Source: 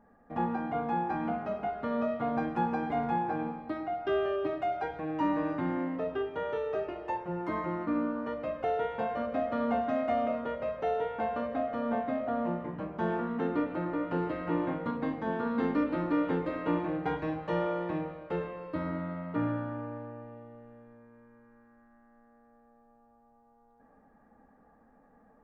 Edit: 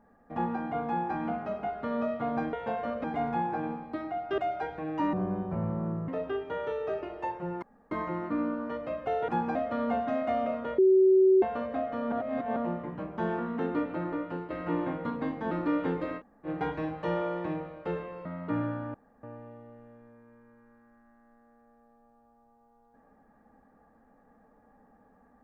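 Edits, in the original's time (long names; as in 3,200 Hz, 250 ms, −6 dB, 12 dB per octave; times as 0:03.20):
0:02.53–0:02.80: swap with 0:08.85–0:09.36
0:04.14–0:04.59: remove
0:05.34–0:05.94: play speed 63%
0:07.48: splice in room tone 0.29 s
0:10.59–0:11.23: beep over 379 Hz −17 dBFS
0:11.93–0:12.37: reverse
0:13.92–0:14.31: fade out, to −10.5 dB
0:15.32–0:15.96: remove
0:16.64–0:16.91: fill with room tone, crossfade 0.06 s
0:18.70–0:19.11: remove
0:19.80–0:20.09: fill with room tone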